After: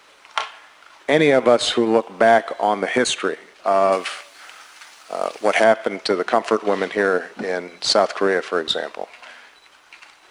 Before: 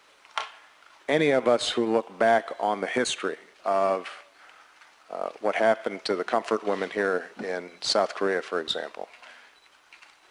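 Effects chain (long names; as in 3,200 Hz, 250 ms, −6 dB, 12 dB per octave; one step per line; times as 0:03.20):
0:03.92–0:05.64: high-shelf EQ 3,200 Hz +12 dB
level +7 dB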